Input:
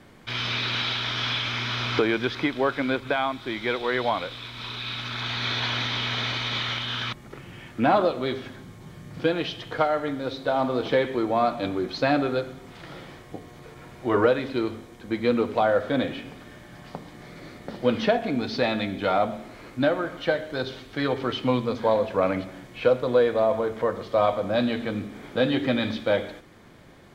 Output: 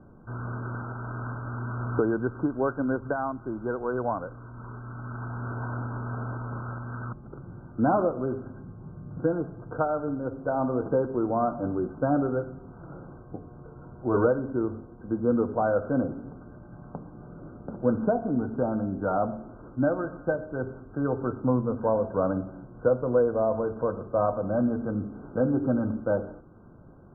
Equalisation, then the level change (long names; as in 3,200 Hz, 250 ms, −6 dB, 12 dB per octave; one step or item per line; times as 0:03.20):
linear-phase brick-wall low-pass 1,600 Hz
high-frequency loss of the air 210 metres
low-shelf EQ 340 Hz +7.5 dB
−4.5 dB